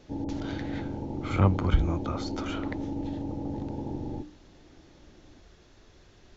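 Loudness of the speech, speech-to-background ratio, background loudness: −30.0 LKFS, 5.0 dB, −35.0 LKFS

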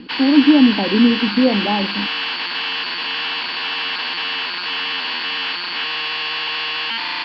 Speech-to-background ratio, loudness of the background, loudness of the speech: 6.0 dB, −21.0 LKFS, −15.0 LKFS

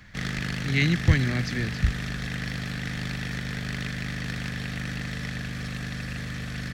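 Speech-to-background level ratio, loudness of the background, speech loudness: 6.0 dB, −32.0 LKFS, −26.0 LKFS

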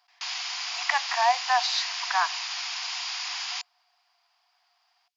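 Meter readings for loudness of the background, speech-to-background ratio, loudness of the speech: −30.5 LKFS, 4.0 dB, −26.5 LKFS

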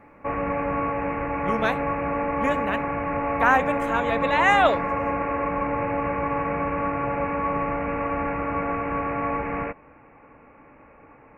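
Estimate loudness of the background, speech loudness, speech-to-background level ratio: −26.5 LKFS, −24.0 LKFS, 2.5 dB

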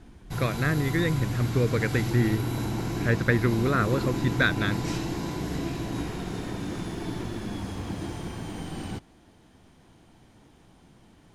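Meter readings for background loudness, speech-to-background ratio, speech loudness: −32.0 LKFS, 5.5 dB, −26.5 LKFS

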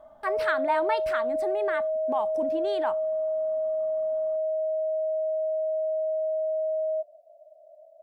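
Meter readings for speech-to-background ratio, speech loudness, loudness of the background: −3.5 dB, −31.5 LKFS, −28.0 LKFS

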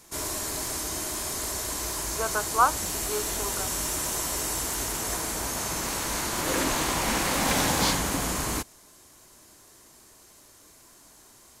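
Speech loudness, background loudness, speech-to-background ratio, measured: −29.0 LKFS, −27.5 LKFS, −1.5 dB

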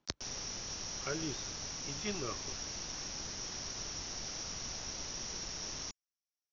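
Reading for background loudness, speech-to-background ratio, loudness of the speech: −40.0 LKFS, −3.5 dB, −43.5 LKFS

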